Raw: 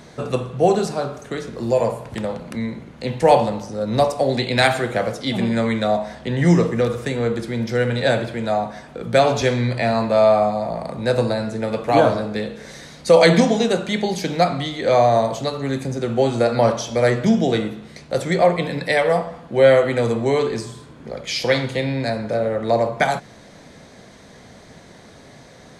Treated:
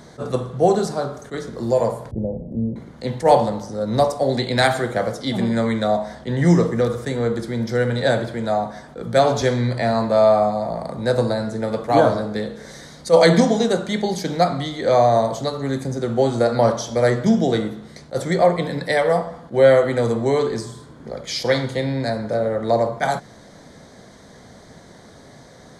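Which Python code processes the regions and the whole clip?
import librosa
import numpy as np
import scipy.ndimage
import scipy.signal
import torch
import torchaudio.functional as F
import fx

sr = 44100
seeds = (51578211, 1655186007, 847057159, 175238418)

y = fx.chain(x, sr, fx.cheby2_lowpass(hz=1200.0, order=4, stop_db=40),
    fx.low_shelf(hz=100.0, db=11.5), at=(2.11, 2.76))
y = fx.peak_eq(y, sr, hz=2600.0, db=-12.5, octaves=0.36)
y = fx.attack_slew(y, sr, db_per_s=380.0)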